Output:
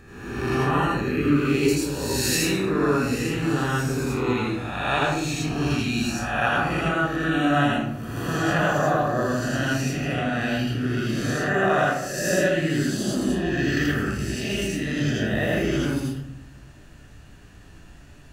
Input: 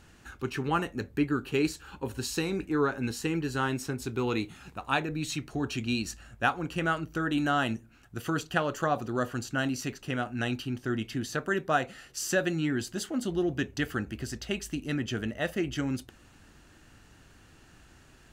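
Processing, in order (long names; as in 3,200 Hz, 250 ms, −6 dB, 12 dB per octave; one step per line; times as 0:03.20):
peak hold with a rise ahead of every peak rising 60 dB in 1.17 s
0:01.68–0:02.58: high-shelf EQ 3,600 Hz +11 dB
convolution reverb RT60 0.80 s, pre-delay 79 ms, DRR −2.5 dB
level −7 dB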